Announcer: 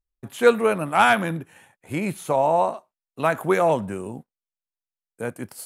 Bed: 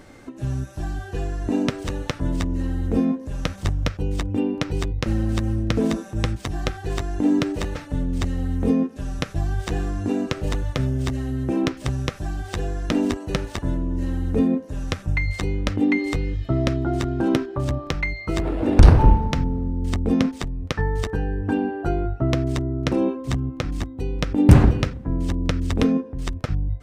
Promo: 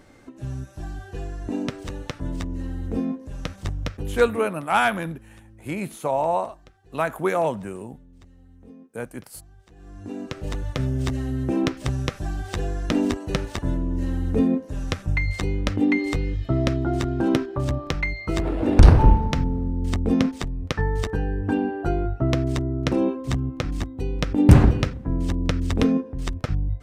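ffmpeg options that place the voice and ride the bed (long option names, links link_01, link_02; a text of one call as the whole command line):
ffmpeg -i stem1.wav -i stem2.wav -filter_complex "[0:a]adelay=3750,volume=-3dB[link_01];[1:a]volume=20.5dB,afade=type=out:start_time=4.11:duration=0.43:silence=0.0891251,afade=type=in:start_time=9.76:duration=1.28:silence=0.0501187[link_02];[link_01][link_02]amix=inputs=2:normalize=0" out.wav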